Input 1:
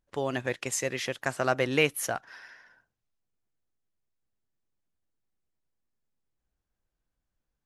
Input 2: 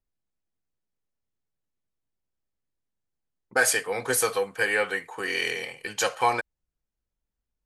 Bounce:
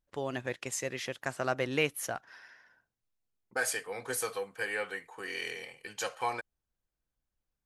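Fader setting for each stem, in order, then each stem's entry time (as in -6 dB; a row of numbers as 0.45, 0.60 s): -5.0, -10.0 dB; 0.00, 0.00 s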